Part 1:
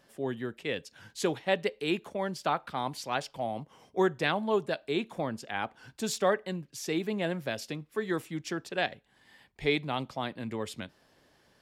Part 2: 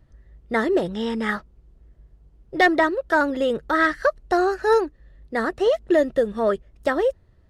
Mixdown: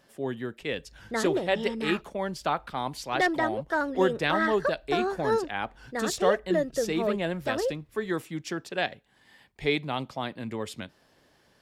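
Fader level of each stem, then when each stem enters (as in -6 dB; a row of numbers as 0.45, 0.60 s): +1.5, -8.0 dB; 0.00, 0.60 s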